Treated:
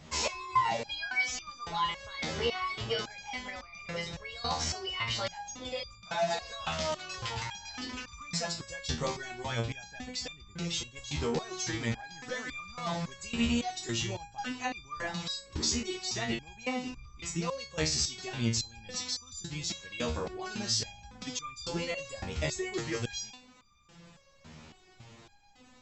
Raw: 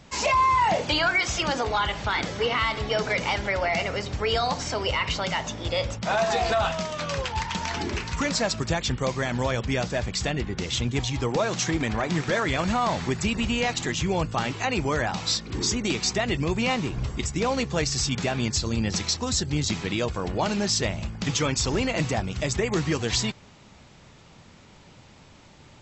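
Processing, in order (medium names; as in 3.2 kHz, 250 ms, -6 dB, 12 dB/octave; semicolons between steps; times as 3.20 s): dynamic bell 4.7 kHz, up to +5 dB, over -39 dBFS, Q 0.81; compression 2:1, threshold -31 dBFS, peak gain reduction 8 dB; resonator arpeggio 3.6 Hz 78–1200 Hz; trim +8 dB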